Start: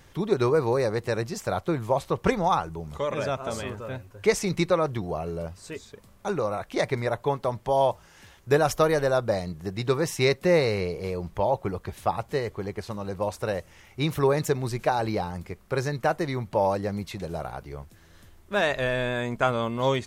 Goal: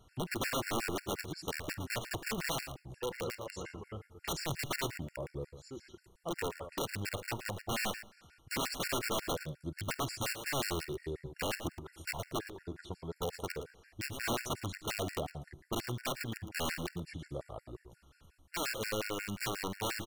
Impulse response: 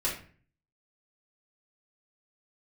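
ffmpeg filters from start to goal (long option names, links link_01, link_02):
-filter_complex "[0:a]asetrate=37084,aresample=44100,atempo=1.18921,aeval=exprs='(mod(9.44*val(0)+1,2)-1)/9.44':channel_layout=same,aecho=1:1:49|113:0.1|0.282,asplit=2[link_01][link_02];[1:a]atrim=start_sample=2205,adelay=70[link_03];[link_02][link_03]afir=irnorm=-1:irlink=0,volume=-25.5dB[link_04];[link_01][link_04]amix=inputs=2:normalize=0,afftfilt=real='re*gt(sin(2*PI*5.6*pts/sr)*(1-2*mod(floor(b*sr/1024/1400),2)),0)':imag='im*gt(sin(2*PI*5.6*pts/sr)*(1-2*mod(floor(b*sr/1024/1400),2)),0)':win_size=1024:overlap=0.75,volume=-7.5dB"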